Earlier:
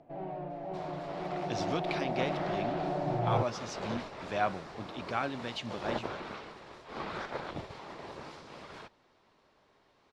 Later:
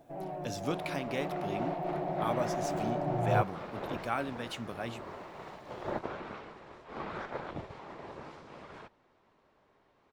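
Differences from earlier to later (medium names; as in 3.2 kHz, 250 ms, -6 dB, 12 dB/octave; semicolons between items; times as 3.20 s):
speech: entry -1.05 s; second sound: add distance through air 140 m; master: remove resonant low-pass 4.7 kHz, resonance Q 1.5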